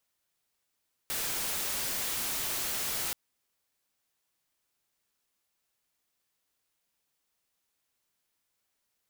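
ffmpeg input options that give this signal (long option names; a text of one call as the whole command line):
ffmpeg -f lavfi -i "anoisesrc=color=white:amplitude=0.0388:duration=2.03:sample_rate=44100:seed=1" out.wav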